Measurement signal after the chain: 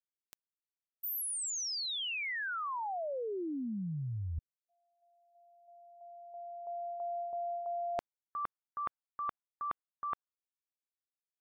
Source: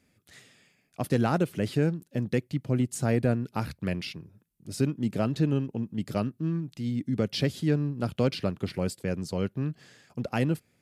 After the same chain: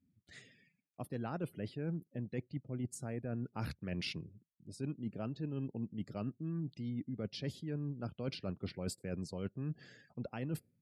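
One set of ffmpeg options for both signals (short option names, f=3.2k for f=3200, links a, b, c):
-af "areverse,acompressor=threshold=-34dB:ratio=12,areverse,afftdn=nr=26:nf=-58,volume=-1.5dB"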